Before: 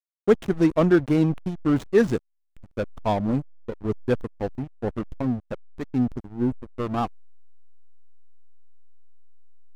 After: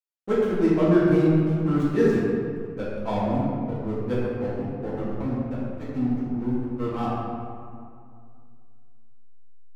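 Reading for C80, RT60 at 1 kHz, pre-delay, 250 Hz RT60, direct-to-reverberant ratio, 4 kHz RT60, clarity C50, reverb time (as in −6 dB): −1.0 dB, 2.2 s, 4 ms, 2.6 s, −9.5 dB, 1.2 s, −2.5 dB, 2.3 s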